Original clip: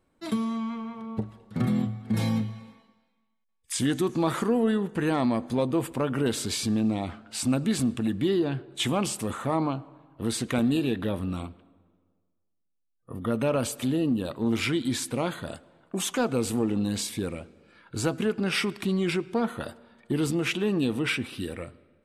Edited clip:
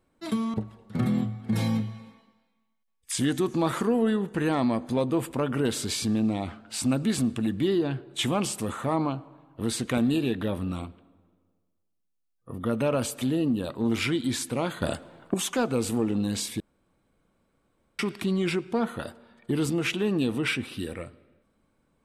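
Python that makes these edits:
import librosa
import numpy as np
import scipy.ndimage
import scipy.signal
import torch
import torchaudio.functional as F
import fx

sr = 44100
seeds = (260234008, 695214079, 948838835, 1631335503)

y = fx.edit(x, sr, fx.cut(start_s=0.54, length_s=0.61),
    fx.clip_gain(start_s=15.43, length_s=0.52, db=8.5),
    fx.room_tone_fill(start_s=17.21, length_s=1.39), tone=tone)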